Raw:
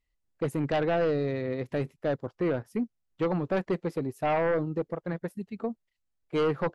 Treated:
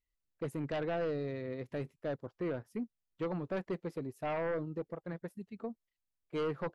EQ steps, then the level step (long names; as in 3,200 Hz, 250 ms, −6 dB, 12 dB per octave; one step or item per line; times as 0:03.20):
notch filter 790 Hz, Q 16
−8.5 dB